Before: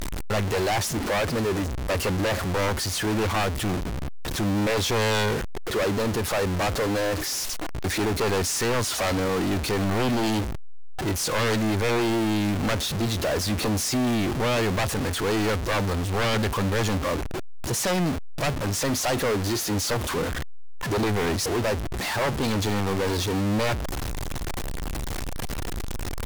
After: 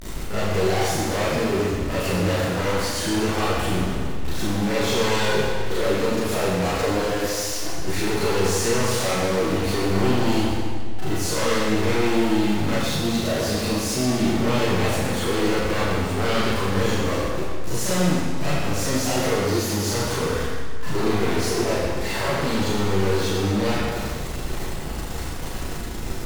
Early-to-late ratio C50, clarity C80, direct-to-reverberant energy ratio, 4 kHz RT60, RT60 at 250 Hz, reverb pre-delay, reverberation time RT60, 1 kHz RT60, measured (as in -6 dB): -3.0 dB, -1.0 dB, -11.5 dB, 1.7 s, 1.8 s, 26 ms, 1.8 s, 1.8 s